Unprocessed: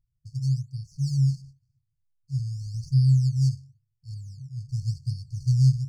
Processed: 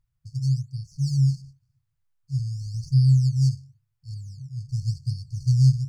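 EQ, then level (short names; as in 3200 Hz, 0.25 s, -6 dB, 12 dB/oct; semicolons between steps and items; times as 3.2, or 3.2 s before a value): bell 1200 Hz +8 dB 2.1 oct; +1.5 dB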